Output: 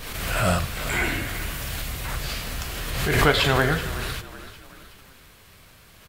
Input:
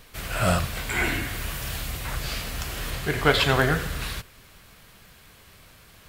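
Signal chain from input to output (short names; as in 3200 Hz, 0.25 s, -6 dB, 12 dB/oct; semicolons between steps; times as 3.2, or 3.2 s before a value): frequency-shifting echo 0.376 s, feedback 45%, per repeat -32 Hz, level -15 dB; backwards sustainer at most 37 dB/s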